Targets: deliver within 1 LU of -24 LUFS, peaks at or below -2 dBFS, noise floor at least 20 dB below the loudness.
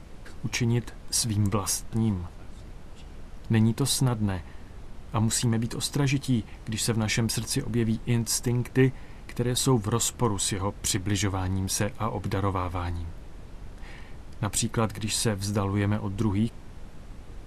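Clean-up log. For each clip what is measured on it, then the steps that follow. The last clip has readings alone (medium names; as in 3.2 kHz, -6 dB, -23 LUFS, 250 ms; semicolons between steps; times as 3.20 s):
noise floor -44 dBFS; noise floor target -47 dBFS; loudness -27.0 LUFS; peak level -10.5 dBFS; loudness target -24.0 LUFS
-> noise print and reduce 6 dB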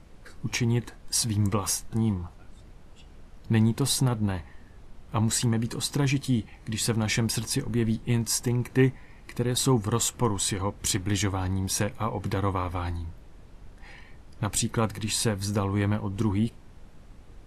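noise floor -50 dBFS; loudness -27.0 LUFS; peak level -10.5 dBFS; loudness target -24.0 LUFS
-> trim +3 dB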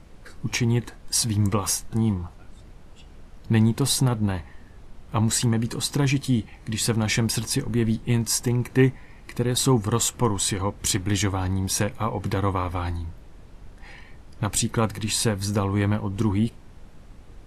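loudness -24.0 LUFS; peak level -7.5 dBFS; noise floor -47 dBFS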